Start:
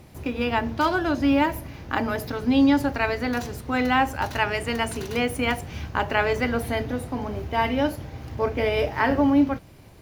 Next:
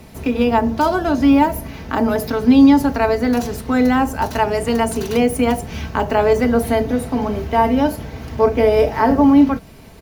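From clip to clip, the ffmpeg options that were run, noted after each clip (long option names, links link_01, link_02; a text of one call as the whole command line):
ffmpeg -i in.wav -filter_complex "[0:a]aecho=1:1:4.5:0.48,acrossover=split=220|1100|5100[link_01][link_02][link_03][link_04];[link_03]acompressor=threshold=-38dB:ratio=6[link_05];[link_01][link_02][link_05][link_04]amix=inputs=4:normalize=0,volume=7.5dB" out.wav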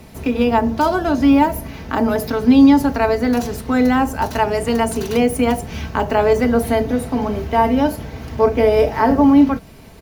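ffmpeg -i in.wav -af anull out.wav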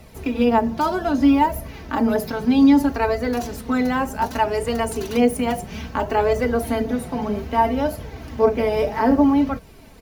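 ffmpeg -i in.wav -af "flanger=delay=1.4:depth=4.5:regen=37:speed=0.63:shape=triangular" out.wav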